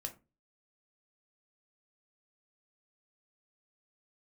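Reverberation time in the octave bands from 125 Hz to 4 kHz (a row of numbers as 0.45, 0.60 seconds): 0.45, 0.40, 0.30, 0.25, 0.20, 0.15 seconds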